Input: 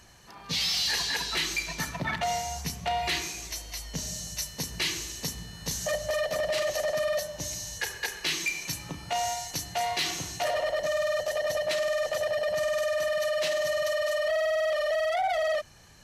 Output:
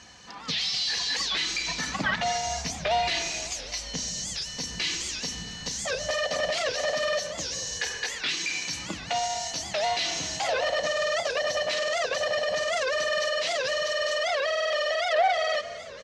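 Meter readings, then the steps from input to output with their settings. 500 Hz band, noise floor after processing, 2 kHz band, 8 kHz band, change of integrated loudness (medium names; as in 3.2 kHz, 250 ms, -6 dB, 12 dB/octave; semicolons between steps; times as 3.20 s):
-0.5 dB, -40 dBFS, +3.0 dB, +2.0 dB, +2.0 dB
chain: high-pass 74 Hz 12 dB/octave; peaking EQ 6.8 kHz +12 dB 2.3 oct; comb 4 ms, depth 43%; peak limiter -18 dBFS, peak gain reduction 10.5 dB; distance through air 140 m; frequency-shifting echo 229 ms, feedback 60%, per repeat -38 Hz, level -15 dB; warped record 78 rpm, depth 250 cents; trim +3 dB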